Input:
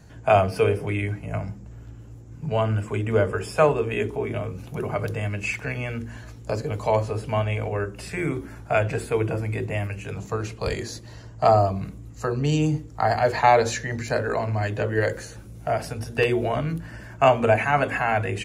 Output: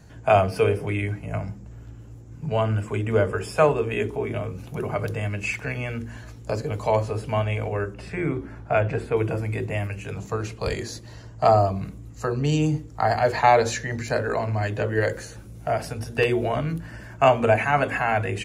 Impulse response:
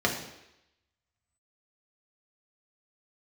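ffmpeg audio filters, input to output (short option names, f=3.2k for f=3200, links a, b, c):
-filter_complex "[0:a]asettb=1/sr,asplit=3[a][b][c];[a]atrim=end=7.944[d];[b]atrim=start=7.94:end=9.17,asetpts=PTS-STARTPTS,afade=t=in:d=0.004:c=qsin,afade=t=out:st=1.226:d=0.004:c=qsin,aemphasis=mode=reproduction:type=75fm[e];[c]atrim=start=9.166[f];[d][e]acrossfade=d=0.004:c1=hsin:c2=qsin[g];[g][f]acrossfade=d=0.004:c1=qsin:c2=hsin"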